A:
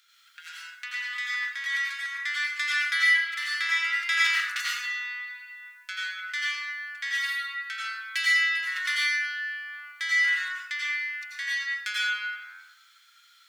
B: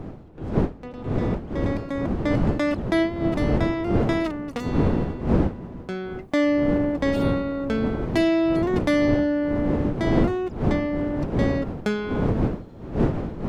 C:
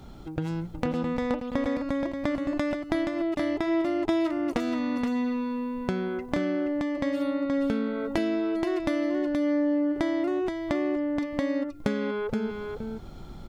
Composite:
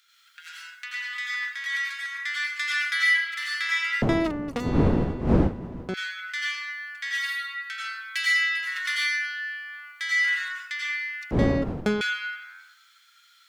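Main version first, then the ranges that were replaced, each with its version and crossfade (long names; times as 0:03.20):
A
0:04.02–0:05.94: punch in from B
0:11.31–0:12.01: punch in from B
not used: C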